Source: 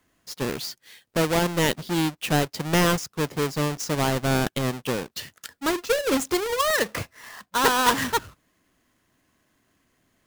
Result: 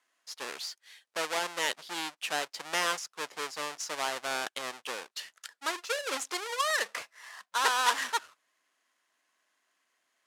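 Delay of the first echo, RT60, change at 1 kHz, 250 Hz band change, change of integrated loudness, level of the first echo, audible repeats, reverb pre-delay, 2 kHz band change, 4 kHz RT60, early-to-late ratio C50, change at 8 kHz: no echo, no reverb, -6.0 dB, -22.0 dB, -8.0 dB, no echo, no echo, no reverb, -4.5 dB, no reverb, no reverb, -5.5 dB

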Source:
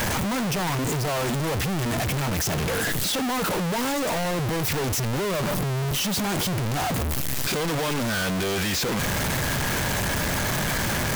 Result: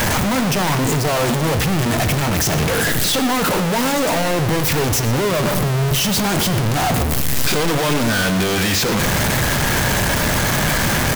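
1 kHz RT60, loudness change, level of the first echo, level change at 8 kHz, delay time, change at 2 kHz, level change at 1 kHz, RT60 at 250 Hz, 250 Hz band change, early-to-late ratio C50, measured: 1.2 s, +7.5 dB, -15.0 dB, +7.5 dB, 119 ms, +7.5 dB, +7.5 dB, 1.5 s, +7.5 dB, 10.5 dB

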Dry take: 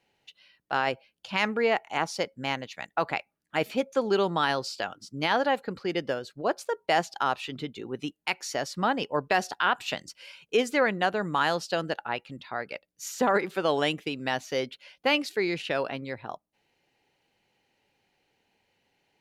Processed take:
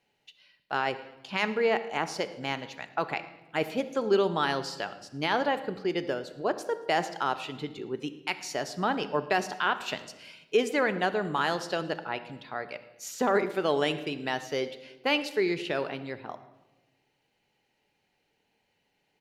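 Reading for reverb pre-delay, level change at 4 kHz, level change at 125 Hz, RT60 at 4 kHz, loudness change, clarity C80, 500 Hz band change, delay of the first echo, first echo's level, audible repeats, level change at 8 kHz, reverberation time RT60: 5 ms, -2.0 dB, -1.0 dB, 0.80 s, -1.5 dB, 15.0 dB, -0.5 dB, 111 ms, -22.0 dB, 3, -2.5 dB, 1.1 s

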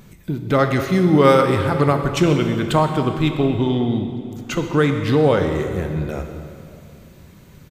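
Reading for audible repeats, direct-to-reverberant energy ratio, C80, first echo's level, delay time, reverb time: 1, 5.0 dB, 7.0 dB, -17.5 dB, 127 ms, 2.5 s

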